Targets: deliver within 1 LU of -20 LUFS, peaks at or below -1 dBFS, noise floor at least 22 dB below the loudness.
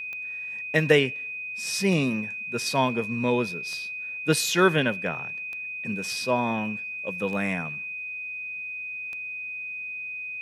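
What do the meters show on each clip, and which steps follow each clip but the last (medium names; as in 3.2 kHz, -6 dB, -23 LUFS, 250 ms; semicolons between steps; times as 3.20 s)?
clicks found 6; steady tone 2.5 kHz; tone level -32 dBFS; loudness -27.0 LUFS; peak level -4.0 dBFS; loudness target -20.0 LUFS
-> de-click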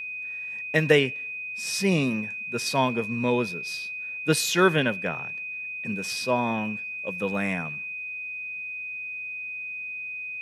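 clicks found 0; steady tone 2.5 kHz; tone level -32 dBFS
-> band-stop 2.5 kHz, Q 30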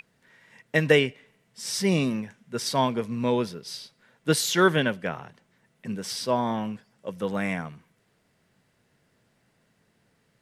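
steady tone not found; loudness -26.0 LUFS; peak level -4.0 dBFS; loudness target -20.0 LUFS
-> trim +6 dB; peak limiter -1 dBFS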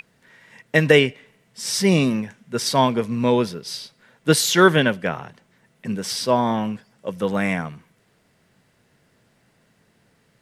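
loudness -20.5 LUFS; peak level -1.0 dBFS; noise floor -63 dBFS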